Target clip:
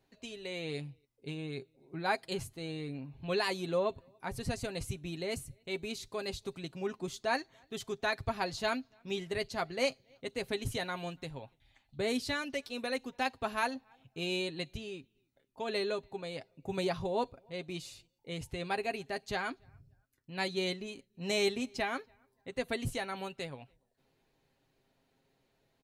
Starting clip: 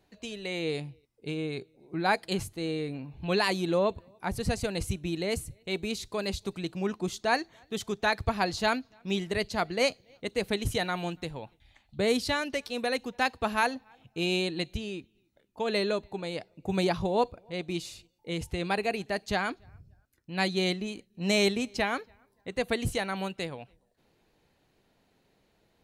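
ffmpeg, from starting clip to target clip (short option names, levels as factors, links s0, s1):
-af "aecho=1:1:7.5:0.47,volume=0.473"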